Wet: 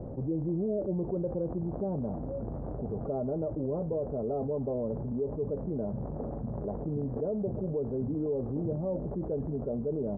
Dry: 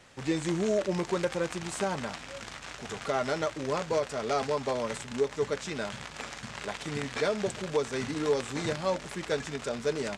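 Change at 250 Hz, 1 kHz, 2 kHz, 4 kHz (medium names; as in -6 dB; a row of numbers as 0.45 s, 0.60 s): +2.0 dB, -10.5 dB, under -30 dB, under -40 dB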